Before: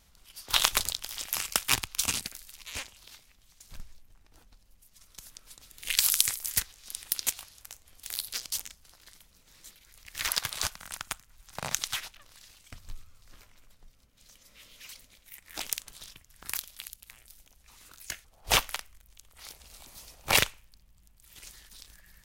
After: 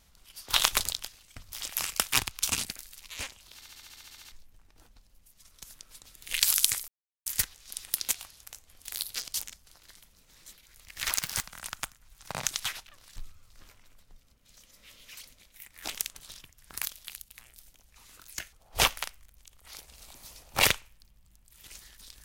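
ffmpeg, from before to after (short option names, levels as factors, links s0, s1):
-filter_complex "[0:a]asplit=18[s0][s1][s2][s3][s4][s5][s6][s7][s8][s9][s10][s11][s12][s13][s14][s15][s16][s17];[s0]atrim=end=1.082[s18];[s1]atrim=start=12.438:end=12.882[s19];[s2]atrim=start=1.078:end=3.182[s20];[s3]atrim=start=3.108:end=3.182[s21];[s4]atrim=start=3.108:end=3.182[s22];[s5]atrim=start=3.108:end=3.182[s23];[s6]atrim=start=3.108:end=3.182[s24];[s7]atrim=start=3.108:end=3.182[s25];[s8]atrim=start=3.108:end=3.182[s26];[s9]atrim=start=3.108:end=3.182[s27];[s10]atrim=start=3.108:end=3.182[s28];[s11]atrim=start=3.108:end=3.182[s29];[s12]atrim=start=3.108:end=3.182[s30];[s13]atrim=start=3.878:end=6.44,asetpts=PTS-STARTPTS,afade=t=out:st=2.558:d=0.004:c=hsin,apad=pad_dur=0.38[s31];[s14]atrim=start=6.44:end=10.324,asetpts=PTS-STARTPTS,afade=t=in:d=0.004:c=hsin[s32];[s15]atrim=start=10.32:end=10.71,asetpts=PTS-STARTPTS,asetrate=59094,aresample=44100,atrim=end_sample=12835,asetpts=PTS-STARTPTS[s33];[s16]atrim=start=10.706:end=12.442[s34];[s17]atrim=start=12.878[s35];[s18][s19]acrossfade=d=0.004:c1=hsin:c2=hsin[s36];[s36][s20]acrossfade=d=0.004:c1=hsin:c2=hsin[s37];[s37][s21]acrossfade=d=0.004:c1=hsin:c2=hsin[s38];[s38][s22]acrossfade=d=0.004:c1=hsin:c2=hsin[s39];[s39][s23]acrossfade=d=0.004:c1=hsin:c2=hsin[s40];[s40][s24]acrossfade=d=0.004:c1=hsin:c2=hsin[s41];[s41][s25]acrossfade=d=0.004:c1=hsin:c2=hsin[s42];[s42][s26]acrossfade=d=0.004:c1=hsin:c2=hsin[s43];[s43][s27]acrossfade=d=0.004:c1=hsin:c2=hsin[s44];[s44][s28]acrossfade=d=0.004:c1=hsin:c2=hsin[s45];[s45][s29]acrossfade=d=0.004:c1=hsin:c2=hsin[s46];[s46][s30]acrossfade=d=0.004:c1=hsin:c2=hsin[s47];[s31][s32]concat=n=2:v=0:a=1[s48];[s47][s48]acrossfade=d=0.004:c1=hsin:c2=hsin[s49];[s49][s33]acrossfade=d=0.004:c1=hsin:c2=hsin[s50];[s50][s34]acrossfade=d=0.004:c1=hsin:c2=hsin[s51];[s51][s35]acrossfade=d=0.004:c1=hsin:c2=hsin"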